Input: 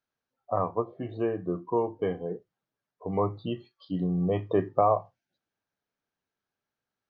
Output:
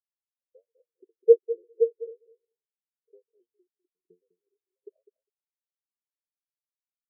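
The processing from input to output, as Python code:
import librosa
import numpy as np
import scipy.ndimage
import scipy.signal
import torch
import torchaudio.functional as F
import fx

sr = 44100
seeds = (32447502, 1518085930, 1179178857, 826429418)

y = fx.local_reverse(x, sr, ms=136.0)
y = scipy.signal.sosfilt(scipy.signal.ellip(3, 1.0, 40, [450.0, 3600.0], 'bandstop', fs=sr, output='sos'), y)
y = fx.filter_lfo_highpass(y, sr, shape='saw_up', hz=3.9, low_hz=380.0, high_hz=2500.0, q=5.4)
y = fx.echo_feedback(y, sr, ms=202, feedback_pct=26, wet_db=-6.0)
y = fx.spectral_expand(y, sr, expansion=2.5)
y = F.gain(torch.from_numpy(y), 6.5).numpy()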